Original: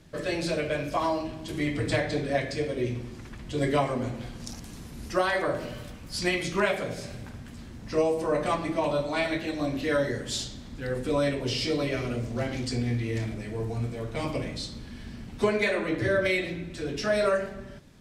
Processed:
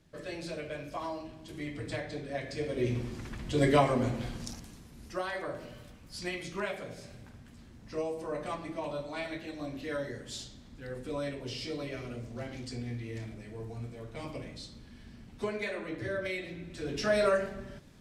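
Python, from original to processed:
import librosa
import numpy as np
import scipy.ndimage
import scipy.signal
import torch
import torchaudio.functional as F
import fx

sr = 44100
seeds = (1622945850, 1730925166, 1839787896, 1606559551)

y = fx.gain(x, sr, db=fx.line((2.32, -10.5), (2.98, 1.0), (4.34, 1.0), (4.83, -10.0), (16.42, -10.0), (17.02, -2.0)))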